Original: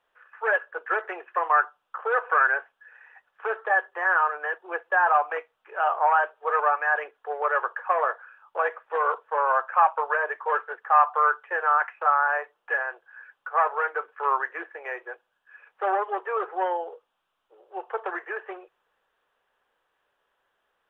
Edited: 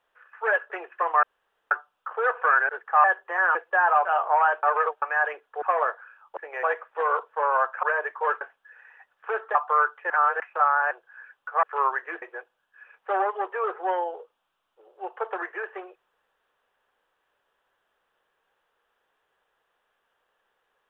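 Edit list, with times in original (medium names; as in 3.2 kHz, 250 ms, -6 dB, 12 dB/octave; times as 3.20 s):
0.70–1.06 s: delete
1.59 s: insert room tone 0.48 s
2.57–3.71 s: swap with 10.66–11.01 s
4.22–4.74 s: delete
5.24–5.76 s: delete
6.34–6.73 s: reverse
7.33–7.83 s: delete
9.78–10.08 s: delete
11.56–11.86 s: reverse
12.37–12.90 s: delete
13.62–14.10 s: delete
14.69–14.95 s: move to 8.58 s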